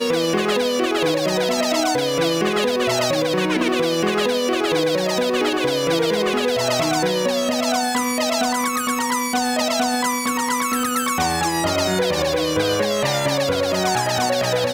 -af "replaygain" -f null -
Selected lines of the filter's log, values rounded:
track_gain = +3.0 dB
track_peak = 0.295